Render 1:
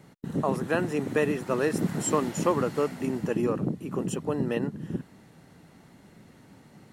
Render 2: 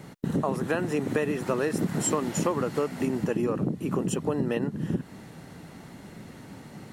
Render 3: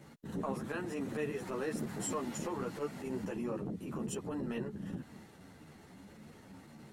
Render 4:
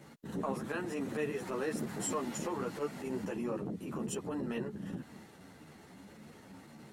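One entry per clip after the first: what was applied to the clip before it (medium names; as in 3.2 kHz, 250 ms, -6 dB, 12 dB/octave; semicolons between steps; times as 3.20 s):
compression 4:1, threshold -33 dBFS, peak gain reduction 12.5 dB; trim +8.5 dB
transient shaper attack -10 dB, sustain +2 dB; three-phase chorus; trim -6 dB
bass shelf 110 Hz -7 dB; trim +2 dB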